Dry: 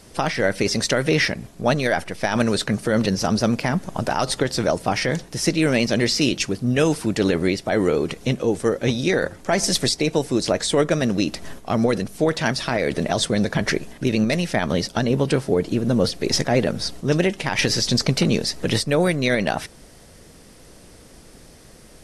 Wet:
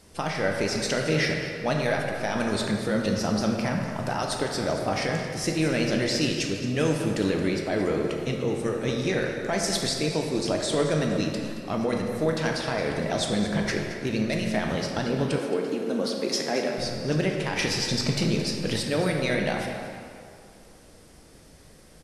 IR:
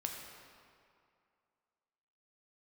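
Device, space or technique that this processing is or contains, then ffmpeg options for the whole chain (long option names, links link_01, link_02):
cave: -filter_complex "[0:a]aecho=1:1:222:0.224[link_01];[1:a]atrim=start_sample=2205[link_02];[link_01][link_02]afir=irnorm=-1:irlink=0,asettb=1/sr,asplit=3[link_03][link_04][link_05];[link_03]atrim=end=15.384[link_06];[link_04]atrim=start=15.38:end=16.78,asetpts=PTS-STARTPTS,afade=type=in:duration=0.004:curve=qsin,afade=type=out:start_time=1.396:duration=0.004:curve=qsin,highpass=frequency=220:width=0.5412,highpass=frequency=220:width=1.3066[link_07];[link_05]atrim=start=16.776[link_08];[link_06][link_07]acrossfade=duration=0.004:curve1=hsin:curve2=qsin[link_09];[link_09][link_08]acrossfade=duration=0.004:curve1=qsin:curve2=hsin,aecho=1:1:467:0.0708,volume=-5.5dB"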